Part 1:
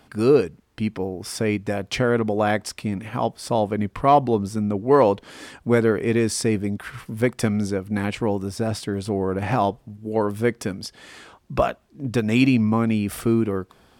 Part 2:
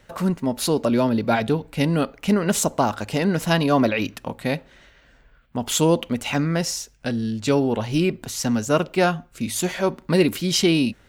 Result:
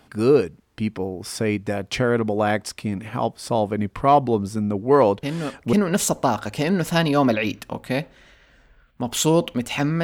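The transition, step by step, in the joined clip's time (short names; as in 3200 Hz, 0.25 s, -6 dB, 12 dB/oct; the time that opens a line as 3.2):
part 1
5.23 add part 2 from 1.78 s 0.50 s -6.5 dB
5.73 switch to part 2 from 2.28 s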